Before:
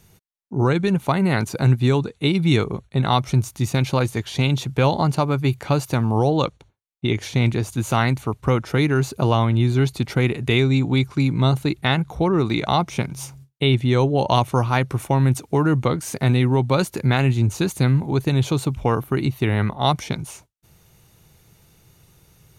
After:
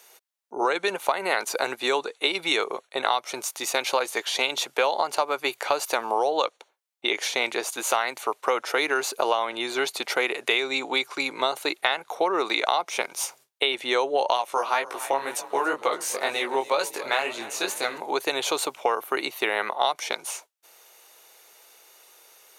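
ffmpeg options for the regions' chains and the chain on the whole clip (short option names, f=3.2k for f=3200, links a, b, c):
-filter_complex "[0:a]asettb=1/sr,asplit=3[a][b][c];[a]atrim=end=14.374[d];[b]atrim=start=14.37:end=17.98,asetpts=PTS-STARTPTS,afade=t=in:d=0.004:c=qsin,afade=t=out:st=3.606:d=0.004:c=qsin,asplit=6[e][f][g][h][i][j];[f]adelay=282,afreqshift=39,volume=-19dB[k];[g]adelay=564,afreqshift=78,volume=-23.4dB[l];[h]adelay=846,afreqshift=117,volume=-27.9dB[m];[i]adelay=1128,afreqshift=156,volume=-32.3dB[n];[j]adelay=1410,afreqshift=195,volume=-36.7dB[o];[e][k][l][m][n][o]amix=inputs=6:normalize=0,atrim=end_sample=159201,flanger=delay=17.5:depth=5:speed=2[p];[c]atrim=start=17.976[q];[d][p]acrossfade=d=0.004:c1=hsin:c2=qsin[r];[r][q]acrossfade=d=0.004:c1=qsin:c2=hsin,highpass=f=490:w=0.5412,highpass=f=490:w=1.3066,acompressor=threshold=-24dB:ratio=10,volume=5.5dB"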